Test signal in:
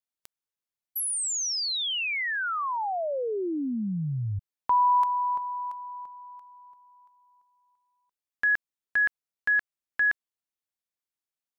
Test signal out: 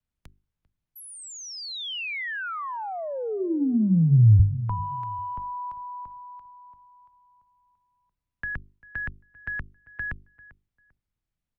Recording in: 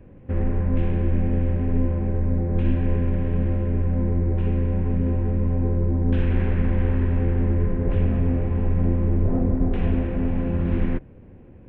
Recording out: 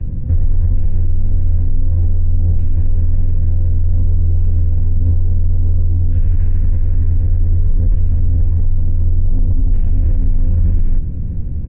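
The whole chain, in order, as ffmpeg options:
-filter_complex "[0:a]areverse,acompressor=threshold=0.0355:ratio=5:attack=2.5:release=33:knee=1:detection=peak,areverse,aemphasis=mode=reproduction:type=riaa,bandreject=f=50:t=h:w=6,bandreject=f=100:t=h:w=6,bandreject=f=150:t=h:w=6,bandreject=f=200:t=h:w=6,bandreject=f=250:t=h:w=6,bandreject=f=300:t=h:w=6,bandreject=f=350:t=h:w=6,bandreject=f=400:t=h:w=6,asplit=2[s0][s1];[s1]adelay=395,lowpass=f=2000:p=1,volume=0.0891,asplit=2[s2][s3];[s3]adelay=395,lowpass=f=2000:p=1,volume=0.25[s4];[s0][s2][s4]amix=inputs=3:normalize=0,acrossover=split=83|310[s5][s6][s7];[s5]acompressor=threshold=0.2:ratio=4[s8];[s6]acompressor=threshold=0.02:ratio=4[s9];[s7]acompressor=threshold=0.0178:ratio=4[s10];[s8][s9][s10]amix=inputs=3:normalize=0,bass=f=250:g=12,treble=f=4000:g=-14,crystalizer=i=4:c=0,alimiter=level_in=2.24:limit=0.891:release=50:level=0:latency=1,volume=0.531" -ar 48000 -c:a libopus -b:a 128k

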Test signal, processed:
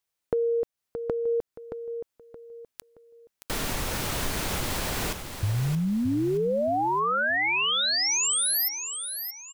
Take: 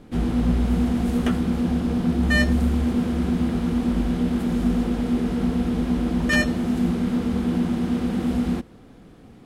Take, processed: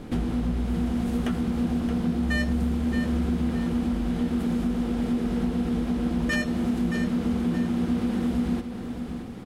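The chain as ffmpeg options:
-af "acompressor=threshold=0.0224:ratio=4,aecho=1:1:623|1246|1869|2492:0.376|0.124|0.0409|0.0135,volume=2.24"

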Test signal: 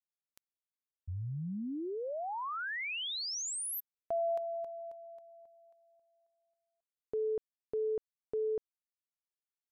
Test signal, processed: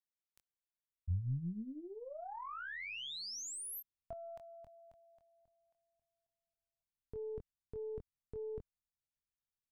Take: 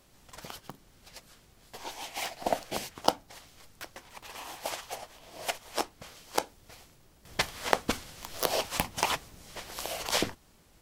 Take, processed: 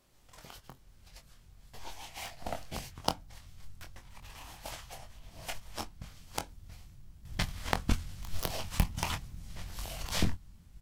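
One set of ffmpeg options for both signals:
-filter_complex "[0:a]asubboost=boost=11:cutoff=130,asplit=2[s0][s1];[s1]adelay=23,volume=0.501[s2];[s0][s2]amix=inputs=2:normalize=0,aeval=exprs='0.841*(cos(1*acos(clip(val(0)/0.841,-1,1)))-cos(1*PI/2))+0.106*(cos(3*acos(clip(val(0)/0.841,-1,1)))-cos(3*PI/2))+0.00473*(cos(7*acos(clip(val(0)/0.841,-1,1)))-cos(7*PI/2))+0.0376*(cos(8*acos(clip(val(0)/0.841,-1,1)))-cos(8*PI/2))':c=same,volume=0.708"

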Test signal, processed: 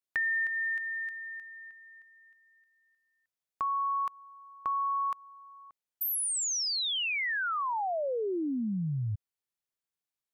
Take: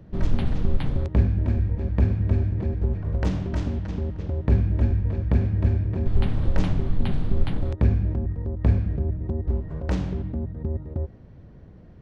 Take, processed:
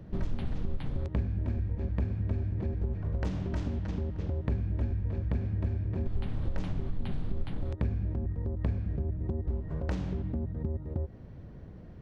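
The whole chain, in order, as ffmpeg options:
-af "acompressor=threshold=0.0316:ratio=3"

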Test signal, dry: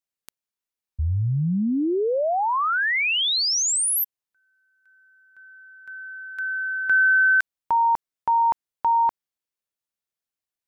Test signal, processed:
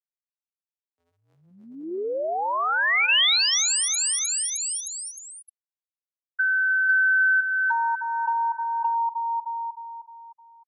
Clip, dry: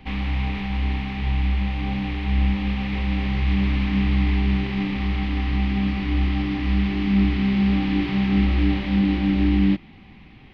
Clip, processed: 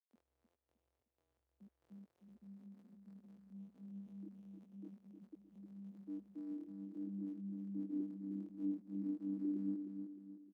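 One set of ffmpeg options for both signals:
-filter_complex "[0:a]bandreject=f=2500:w=28,afwtdn=0.0355,afftfilt=real='re*gte(hypot(re,im),0.447)':imag='im*gte(hypot(re,im),0.447)':win_size=1024:overlap=0.75,highpass=f=450:w=0.5412,highpass=f=450:w=1.3066,asplit=2[s0][s1];[s1]aecho=0:1:308|616|924|1232|1540:0.447|0.188|0.0788|0.0331|0.0139[s2];[s0][s2]amix=inputs=2:normalize=0,acompressor=threshold=0.0398:ratio=4:attack=12:release=851:knee=1:detection=peak,crystalizer=i=10:c=0,acrossover=split=3100[s3][s4];[s4]acompressor=threshold=0.0562:ratio=4:attack=1:release=60[s5];[s3][s5]amix=inputs=2:normalize=0"

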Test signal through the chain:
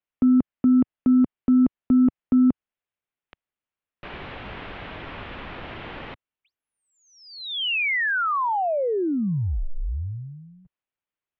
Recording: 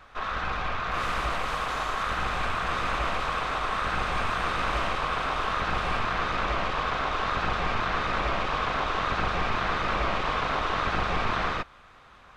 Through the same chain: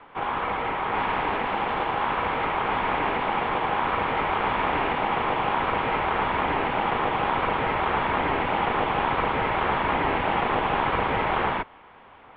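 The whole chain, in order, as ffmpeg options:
-af "lowshelf=f=140:g=-6.5,aeval=exprs='0.168*(cos(1*acos(clip(val(0)/0.168,-1,1)))-cos(1*PI/2))+0.00944*(cos(3*acos(clip(val(0)/0.168,-1,1)))-cos(3*PI/2))':c=same,highpass=f=190:t=q:w=0.5412,highpass=f=190:t=q:w=1.307,lowpass=f=3400:t=q:w=0.5176,lowpass=f=3400:t=q:w=0.7071,lowpass=f=3400:t=q:w=1.932,afreqshift=-280,volume=1.88"

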